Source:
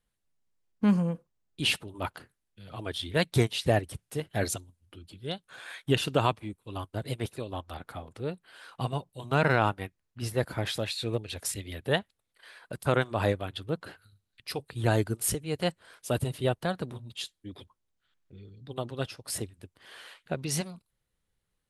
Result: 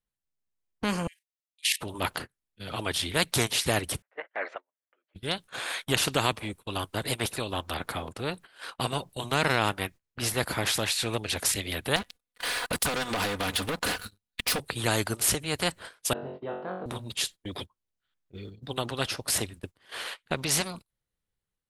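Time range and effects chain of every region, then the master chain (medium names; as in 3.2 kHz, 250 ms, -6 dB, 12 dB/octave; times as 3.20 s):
1.07–1.81 s: steep high-pass 1.8 kHz 96 dB/octave + level held to a coarse grid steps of 14 dB
4.02–5.15 s: elliptic band-pass 560–2000 Hz, stop band 80 dB + peaking EQ 920 Hz -6.5 dB 1.5 oct
11.96–14.60 s: comb 4.1 ms, depth 77% + compression 5:1, threshold -37 dBFS + waveshaping leveller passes 3
16.13–16.86 s: ladder band-pass 460 Hz, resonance 20% + flutter echo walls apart 3.7 m, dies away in 0.52 s + careless resampling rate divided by 4×, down none, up filtered
whole clip: gate -48 dBFS, range -21 dB; level rider gain up to 3.5 dB; spectrum-flattening compressor 2:1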